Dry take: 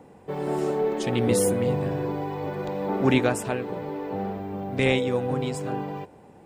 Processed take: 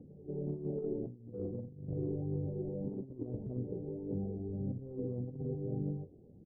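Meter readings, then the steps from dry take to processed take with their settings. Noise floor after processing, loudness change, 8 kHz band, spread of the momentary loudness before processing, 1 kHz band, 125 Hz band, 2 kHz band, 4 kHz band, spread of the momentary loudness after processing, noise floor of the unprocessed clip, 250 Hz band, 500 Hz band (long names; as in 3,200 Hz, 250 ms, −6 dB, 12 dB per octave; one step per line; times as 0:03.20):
−57 dBFS, −13.5 dB, below −40 dB, 10 LU, −31.0 dB, −8.0 dB, below −40 dB, below −40 dB, 5 LU, −51 dBFS, −12.0 dB, −15.5 dB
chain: double-tracking delay 33 ms −12.5 dB
echo ahead of the sound 193 ms −18 dB
phase shifter 1.7 Hz, delay 3.1 ms, feedback 41%
Gaussian smoothing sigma 22 samples
compressor whose output falls as the input rises −32 dBFS, ratio −0.5
level −5.5 dB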